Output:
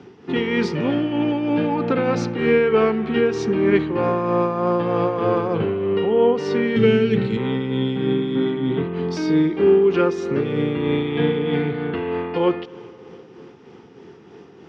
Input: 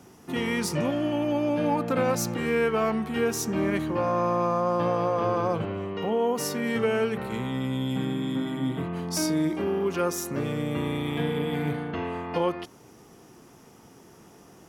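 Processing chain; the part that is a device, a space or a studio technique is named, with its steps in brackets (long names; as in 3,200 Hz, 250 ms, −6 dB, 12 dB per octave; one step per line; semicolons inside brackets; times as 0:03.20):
combo amplifier with spring reverb and tremolo (spring reverb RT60 3.4 s, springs 51/59 ms, chirp 70 ms, DRR 15.5 dB; amplitude tremolo 3.2 Hz, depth 40%; loudspeaker in its box 91–4,100 Hz, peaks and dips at 410 Hz +9 dB, 620 Hz −9 dB, 1,100 Hz −4 dB)
0:06.76–0:07.37: octave-band graphic EQ 125/250/500/1,000/4,000/8,000 Hz +9/+6/−5/−8/+5/+9 dB
level +7.5 dB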